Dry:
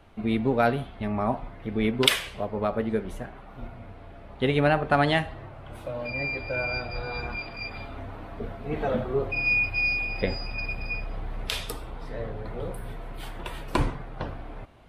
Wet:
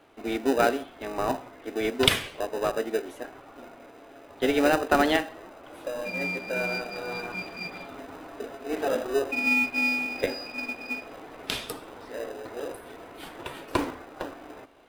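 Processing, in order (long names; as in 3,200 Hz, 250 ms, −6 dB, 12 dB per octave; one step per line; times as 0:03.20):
elliptic high-pass filter 270 Hz
in parallel at −6.5 dB: decimation without filtering 40×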